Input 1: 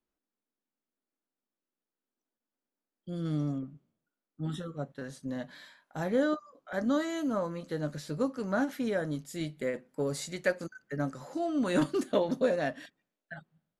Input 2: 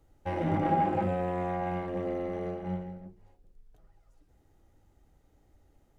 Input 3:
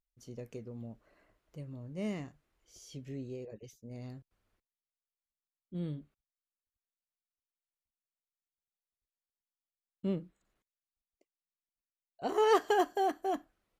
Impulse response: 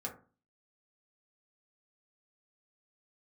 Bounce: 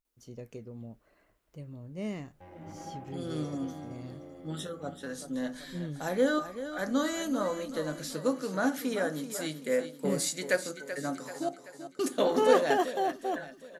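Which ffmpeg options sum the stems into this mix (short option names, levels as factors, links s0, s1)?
-filter_complex "[0:a]highpass=230,highshelf=f=4800:g=11.5,adelay=50,volume=0.794,asplit=3[s0][s1][s2];[s0]atrim=end=11.49,asetpts=PTS-STARTPTS,afade=t=out:st=11.486:d=0.004:c=hsin[s3];[s1]atrim=start=11.49:end=11.99,asetpts=PTS-STARTPTS,volume=0[s4];[s2]atrim=start=11.99,asetpts=PTS-STARTPTS,afade=t=in:d=0.004:c=hsin[s5];[s3][s4][s5]concat=n=3:v=0:a=1,asplit=3[s6][s7][s8];[s7]volume=0.531[s9];[s8]volume=0.376[s10];[1:a]acompressor=mode=upward:threshold=0.0251:ratio=2.5,adelay=2150,volume=0.141[s11];[2:a]volume=1.06,asplit=2[s12][s13];[s13]apad=whole_len=358851[s14];[s11][s14]sidechaincompress=threshold=0.0126:ratio=8:attack=16:release=917[s15];[3:a]atrim=start_sample=2205[s16];[s9][s16]afir=irnorm=-1:irlink=0[s17];[s10]aecho=0:1:384|768|1152|1536|1920|2304|2688:1|0.51|0.26|0.133|0.0677|0.0345|0.0176[s18];[s6][s15][s12][s17][s18]amix=inputs=5:normalize=0"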